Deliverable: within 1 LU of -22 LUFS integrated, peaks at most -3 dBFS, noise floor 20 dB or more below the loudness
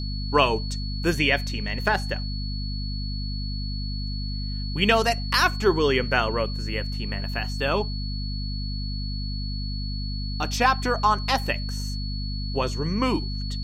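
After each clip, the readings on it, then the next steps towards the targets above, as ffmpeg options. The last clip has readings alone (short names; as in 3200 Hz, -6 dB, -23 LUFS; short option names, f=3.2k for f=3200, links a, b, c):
hum 50 Hz; harmonics up to 250 Hz; hum level -27 dBFS; steady tone 4400 Hz; tone level -36 dBFS; loudness -25.5 LUFS; peak -5.0 dBFS; loudness target -22.0 LUFS
-> -af "bandreject=f=50:t=h:w=6,bandreject=f=100:t=h:w=6,bandreject=f=150:t=h:w=6,bandreject=f=200:t=h:w=6,bandreject=f=250:t=h:w=6"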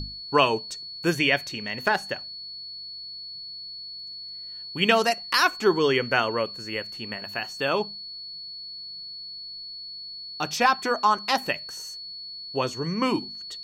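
hum none; steady tone 4400 Hz; tone level -36 dBFS
-> -af "bandreject=f=4.4k:w=30"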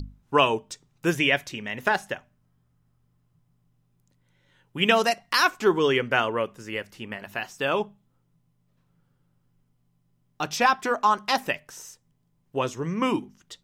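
steady tone none; loudness -25.0 LUFS; peak -5.0 dBFS; loudness target -22.0 LUFS
-> -af "volume=3dB,alimiter=limit=-3dB:level=0:latency=1"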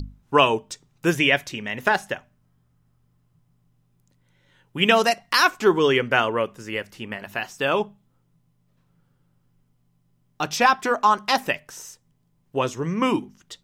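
loudness -22.0 LUFS; peak -3.0 dBFS; noise floor -66 dBFS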